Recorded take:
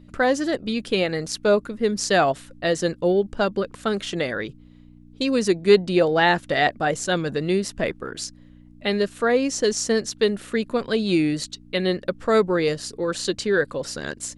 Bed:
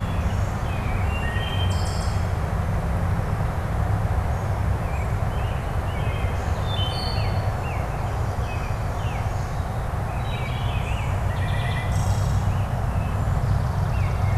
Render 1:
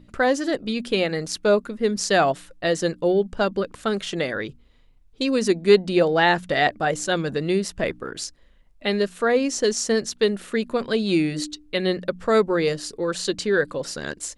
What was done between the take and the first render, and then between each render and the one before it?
de-hum 60 Hz, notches 5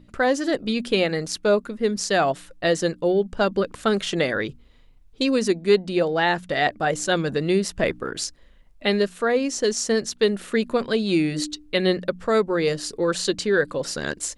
gain riding within 3 dB 0.5 s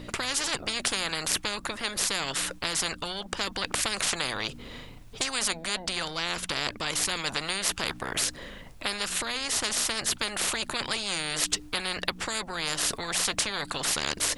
in parallel at +1 dB: compression, threshold -29 dBFS, peak gain reduction 15.5 dB; on the sum: spectrum-flattening compressor 10:1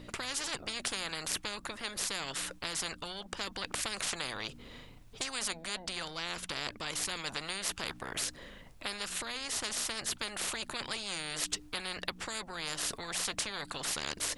trim -7.5 dB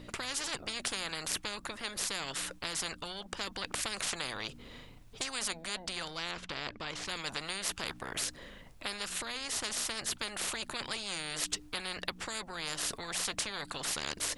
6.31–7.08 s: distance through air 110 m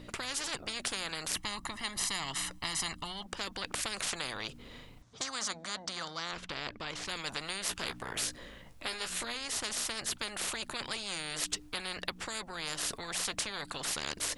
1.36–3.26 s: comb 1 ms; 5.02–6.33 s: cabinet simulation 100–8100 Hz, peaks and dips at 400 Hz -5 dB, 1.2 kHz +5 dB, 2.6 kHz -8 dB, 6.1 kHz +5 dB; 7.68–9.35 s: doubling 17 ms -6.5 dB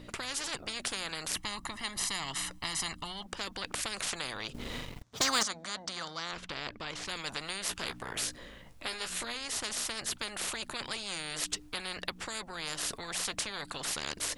4.54–5.43 s: waveshaping leveller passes 3

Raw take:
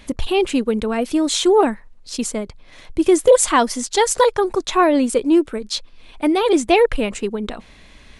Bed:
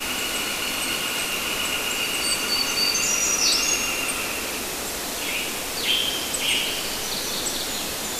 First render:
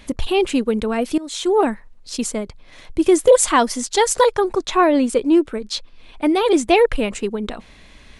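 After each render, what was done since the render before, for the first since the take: 1.18–1.72 s: fade in linear, from -18.5 dB; 4.42–6.27 s: treble shelf 8 kHz -6.5 dB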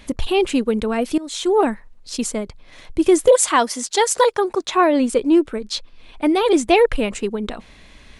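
3.30–4.99 s: high-pass 390 Hz -> 170 Hz 6 dB/octave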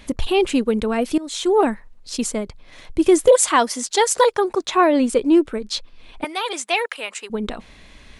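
6.24–7.30 s: high-pass 970 Hz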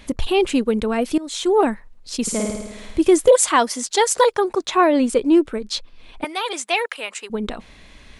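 2.22–3.00 s: flutter echo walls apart 9.1 m, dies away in 1.1 s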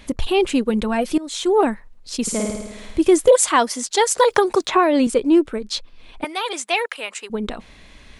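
0.69–1.17 s: comb 5.6 ms, depth 53%; 4.30–5.07 s: three bands compressed up and down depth 100%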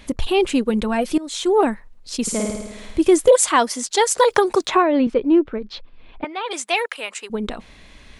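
4.82–6.51 s: distance through air 300 m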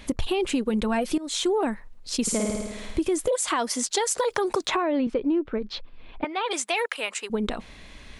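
peak limiter -11 dBFS, peak gain reduction 9 dB; compression, threshold -21 dBFS, peak gain reduction 7.5 dB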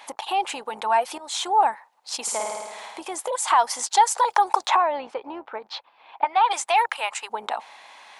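octave divider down 2 oct, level -4 dB; resonant high-pass 840 Hz, resonance Q 5.9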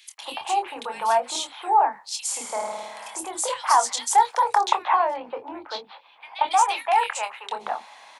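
doubling 25 ms -8 dB; three bands offset in time highs, mids, lows 180/220 ms, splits 380/2400 Hz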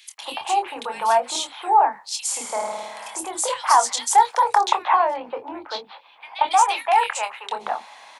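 trim +2.5 dB; peak limiter -3 dBFS, peak gain reduction 1.5 dB

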